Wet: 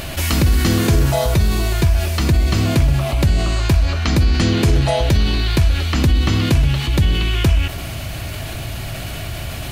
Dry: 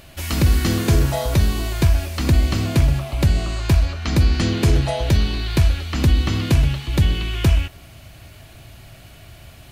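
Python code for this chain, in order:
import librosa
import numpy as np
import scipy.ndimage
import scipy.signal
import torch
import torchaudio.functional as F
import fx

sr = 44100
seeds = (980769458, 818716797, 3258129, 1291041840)

y = fx.notch_comb(x, sr, f0_hz=270.0, at=(1.11, 2.57))
y = fx.env_flatten(y, sr, amount_pct=50)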